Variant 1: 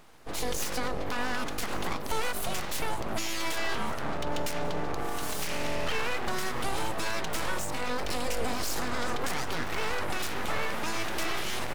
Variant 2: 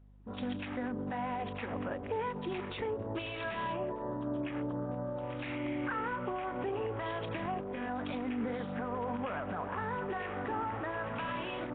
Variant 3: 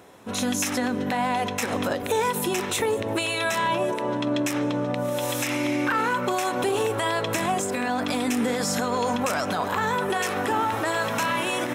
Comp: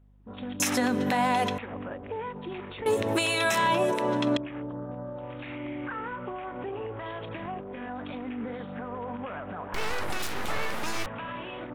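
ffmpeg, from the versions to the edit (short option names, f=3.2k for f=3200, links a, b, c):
-filter_complex "[2:a]asplit=2[a][b];[1:a]asplit=4[c][d][e][f];[c]atrim=end=0.602[g];[a]atrim=start=0.598:end=1.582[h];[d]atrim=start=1.578:end=2.862[i];[b]atrim=start=2.858:end=4.372[j];[e]atrim=start=4.368:end=9.742[k];[0:a]atrim=start=9.738:end=11.062[l];[f]atrim=start=11.058[m];[g][h]acrossfade=d=0.004:c1=hsin:c2=hsin[n];[n][i]acrossfade=d=0.004:c1=hsin:c2=hsin[o];[o][j]acrossfade=d=0.004:c1=hsin:c2=hsin[p];[p][k]acrossfade=d=0.004:c1=hsin:c2=hsin[q];[q][l]acrossfade=d=0.004:c1=hsin:c2=hsin[r];[r][m]acrossfade=d=0.004:c1=hsin:c2=hsin"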